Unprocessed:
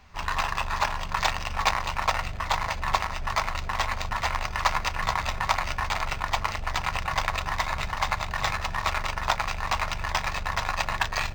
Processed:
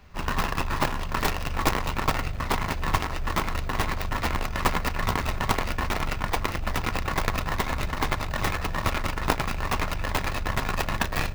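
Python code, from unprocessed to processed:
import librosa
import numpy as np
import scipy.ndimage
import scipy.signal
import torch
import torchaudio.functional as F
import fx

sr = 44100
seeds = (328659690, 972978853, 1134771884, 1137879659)

p1 = fx.tracing_dist(x, sr, depth_ms=0.33)
p2 = fx.peak_eq(p1, sr, hz=8700.0, db=-3.0, octaves=1.4)
p3 = fx.sample_hold(p2, sr, seeds[0], rate_hz=1200.0, jitter_pct=0)
p4 = p2 + (p3 * librosa.db_to_amplitude(-4.0))
y = p4 * librosa.db_to_amplitude(-1.0)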